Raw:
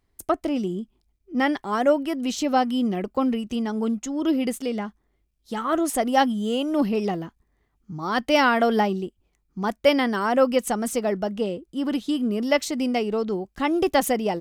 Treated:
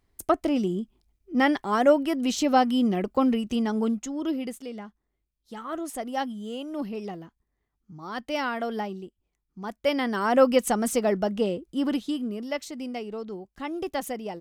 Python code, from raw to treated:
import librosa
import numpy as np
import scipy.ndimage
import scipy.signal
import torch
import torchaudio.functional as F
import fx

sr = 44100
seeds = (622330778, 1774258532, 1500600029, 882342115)

y = fx.gain(x, sr, db=fx.line((3.76, 0.5), (4.63, -10.0), (9.63, -10.0), (10.39, 0.5), (11.81, 0.5), (12.48, -10.0)))